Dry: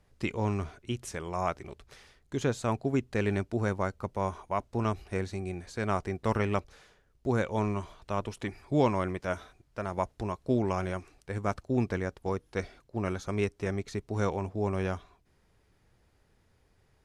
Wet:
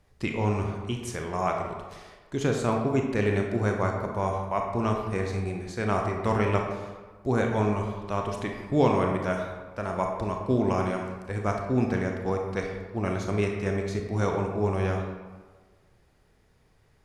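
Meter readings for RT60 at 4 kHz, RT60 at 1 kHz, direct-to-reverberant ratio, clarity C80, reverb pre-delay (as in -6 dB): 0.80 s, 1.4 s, 1.5 dB, 5.5 dB, 26 ms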